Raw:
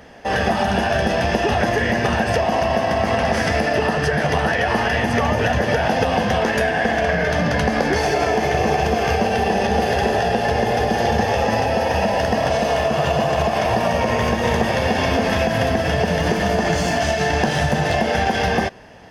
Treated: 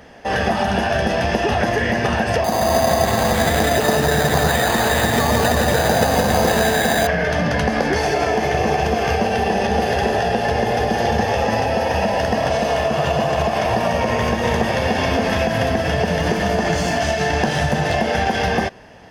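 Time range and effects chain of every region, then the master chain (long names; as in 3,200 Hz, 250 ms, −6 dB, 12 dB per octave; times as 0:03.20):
0:02.44–0:07.07: echo with a time of its own for lows and highs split 440 Hz, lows 108 ms, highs 167 ms, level −3 dB + bad sample-rate conversion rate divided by 8×, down filtered, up hold
whole clip: no processing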